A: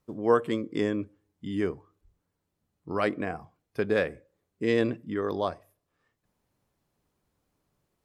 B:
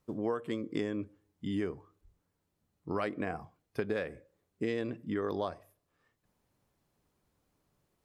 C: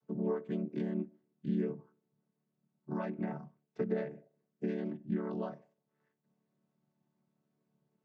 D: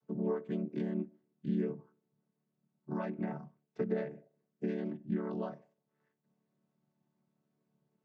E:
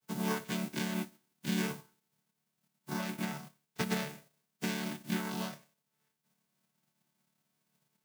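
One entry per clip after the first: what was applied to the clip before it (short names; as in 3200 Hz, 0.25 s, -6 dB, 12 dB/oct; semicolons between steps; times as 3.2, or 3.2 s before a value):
compressor 16:1, threshold -29 dBFS, peak gain reduction 14 dB
chord vocoder major triad, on D3
nothing audible
spectral whitening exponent 0.3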